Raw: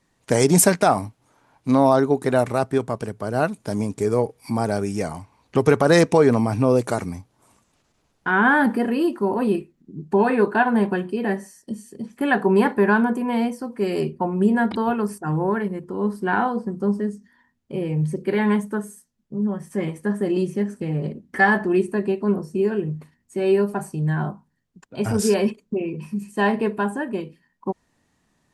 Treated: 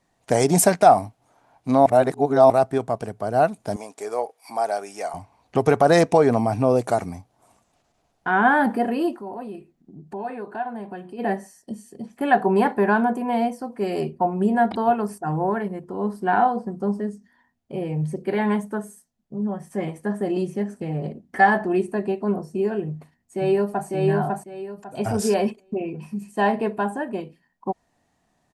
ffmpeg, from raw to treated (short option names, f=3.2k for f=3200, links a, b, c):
-filter_complex "[0:a]asettb=1/sr,asplit=3[a][b][c];[a]atrim=end=3.764[d];[b]atrim=start=3.76:end=5.14,asetpts=PTS-STARTPTS,afade=t=in:d=0.004:c=qsin,afade=t=out:st=1.376:d=0.004:c=qsin,highpass=600[e];[c]atrim=start=5.136[f];[d][e]acrossfade=d=0.004:c1=hsin:c2=qsin[g];[g][f]acrossfade=d=0.004:c1=qsin:c2=hsin,asplit=3[h][i][j];[h]afade=t=out:st=9.15:d=0.02[k];[i]acompressor=threshold=-39dB:ratio=2:attack=3.2:release=140:knee=1:detection=peak,afade=t=in:st=9.15:d=0.02,afade=t=out:st=11.18:d=0.02[l];[j]afade=t=in:st=11.18:d=0.02[m];[k][l][m]amix=inputs=3:normalize=0,asplit=2[n][o];[o]afade=t=in:st=22.86:d=0.01,afade=t=out:st=23.88:d=0.01,aecho=0:1:550|1100|1650|2200:0.841395|0.210349|0.0525872|0.0131468[p];[n][p]amix=inputs=2:normalize=0,asplit=3[q][r][s];[q]atrim=end=1.862[t];[r]atrim=start=1.858:end=2.502,asetpts=PTS-STARTPTS,areverse[u];[s]atrim=start=2.498[v];[t][u]acrossfade=d=0.004:c1=hsin:c2=hsin[w];[w][v]acrossfade=d=0.004:c1=hsin:c2=hsin,equalizer=f=710:t=o:w=0.44:g=11,volume=-3dB"